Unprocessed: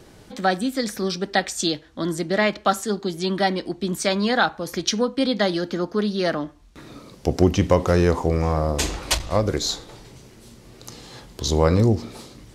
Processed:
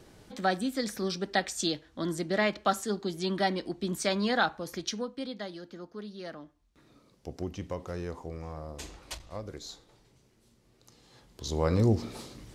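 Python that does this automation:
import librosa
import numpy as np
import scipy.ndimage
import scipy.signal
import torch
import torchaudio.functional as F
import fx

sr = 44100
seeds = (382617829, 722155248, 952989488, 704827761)

y = fx.gain(x, sr, db=fx.line((4.52, -7.0), (5.5, -19.0), (10.96, -19.0), (11.53, -11.5), (12.03, -3.5)))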